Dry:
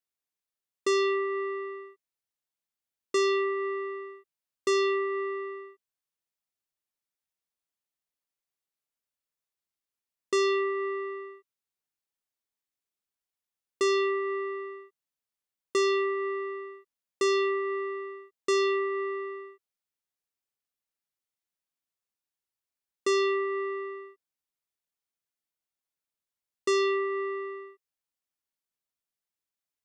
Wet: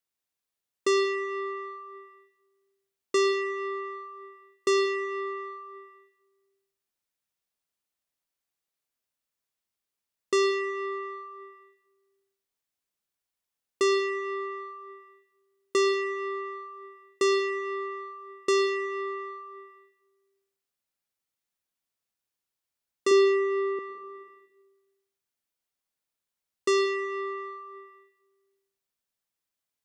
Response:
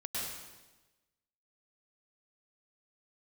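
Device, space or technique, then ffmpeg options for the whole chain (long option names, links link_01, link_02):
compressed reverb return: -filter_complex "[0:a]asettb=1/sr,asplit=3[link_01][link_02][link_03];[link_01]atrim=end=23.114[link_04];[link_02]atrim=start=23.11:end=23.79,asetpts=PTS-STARTPTS,afade=type=in:duration=0.004:curve=qsin,afade=type=out:start_time=0.676:duration=0.004:curve=qsin,lowshelf=frequency=280:width_type=q:width=3:gain=-8[link_05];[link_03]atrim=start=23.786[link_06];[link_04][link_05]acrossfade=duration=0.004:curve1=hsin:curve2=qsin[link_07];[link_07][link_06]acrossfade=duration=0.004:curve1=qsin:curve2=hsin,asplit=2[link_08][link_09];[1:a]atrim=start_sample=2205[link_10];[link_09][link_10]afir=irnorm=-1:irlink=0,acompressor=threshold=-31dB:ratio=6,volume=-5.5dB[link_11];[link_08][link_11]amix=inputs=2:normalize=0"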